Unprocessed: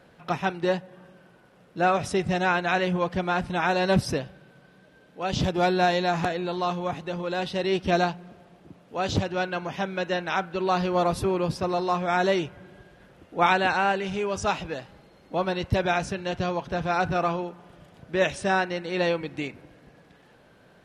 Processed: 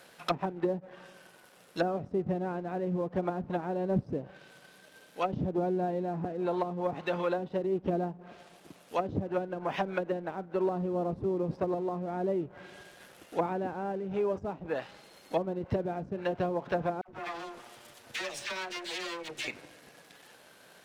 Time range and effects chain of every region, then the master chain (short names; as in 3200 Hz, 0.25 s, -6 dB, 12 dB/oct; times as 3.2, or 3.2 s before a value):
17.01–19.48 minimum comb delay 8.5 ms + dispersion lows, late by 74 ms, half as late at 950 Hz + compressor 4:1, threshold -40 dBFS
whole clip: RIAA curve recording; treble ducked by the level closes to 320 Hz, closed at -24.5 dBFS; sample leveller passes 1